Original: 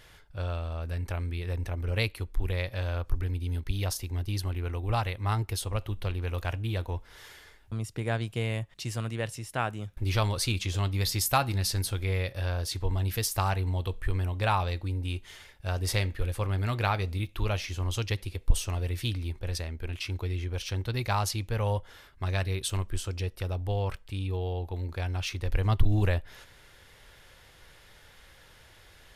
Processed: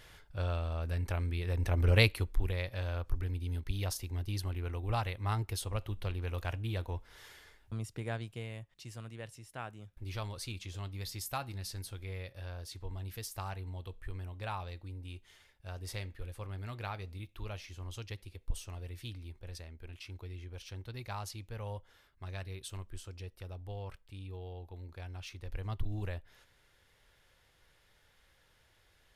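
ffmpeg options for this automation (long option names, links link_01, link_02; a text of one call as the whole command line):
ffmpeg -i in.wav -af "volume=5dB,afade=type=in:start_time=1.54:duration=0.31:silence=0.473151,afade=type=out:start_time=1.85:duration=0.69:silence=0.316228,afade=type=out:start_time=7.75:duration=0.75:silence=0.398107" out.wav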